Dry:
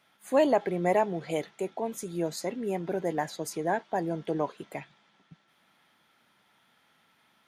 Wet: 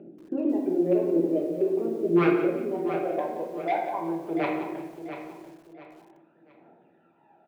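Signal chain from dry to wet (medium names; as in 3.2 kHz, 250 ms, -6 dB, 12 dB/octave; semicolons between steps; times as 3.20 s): local Wiener filter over 41 samples; peaking EQ 1.4 kHz -8 dB 1.6 oct; in parallel at -3 dB: compression 12:1, threshold -37 dBFS, peak gain reduction 17 dB; on the sum: peak limiter -23.5 dBFS, peak gain reduction 9.5 dB; upward compressor, threshold -50 dBFS; band-pass sweep 340 Hz -> 920 Hz, 1.13–3.68 s; phaser 0.45 Hz, delay 2.1 ms, feedback 73%; wavefolder -28 dBFS; cabinet simulation 130–3800 Hz, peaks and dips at 210 Hz -6 dB, 330 Hz +10 dB, 2.5 kHz +5 dB; feedback delay 689 ms, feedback 32%, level -10.5 dB; simulated room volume 260 m³, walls mixed, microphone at 1.2 m; bit-crushed delay 176 ms, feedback 35%, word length 9-bit, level -12 dB; trim +6 dB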